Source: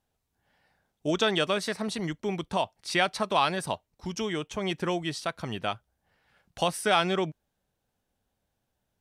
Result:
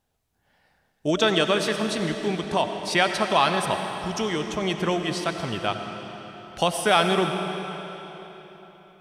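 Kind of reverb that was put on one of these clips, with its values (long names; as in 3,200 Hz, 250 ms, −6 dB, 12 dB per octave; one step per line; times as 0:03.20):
comb and all-pass reverb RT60 3.9 s, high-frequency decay 0.9×, pre-delay 50 ms, DRR 5.5 dB
level +4 dB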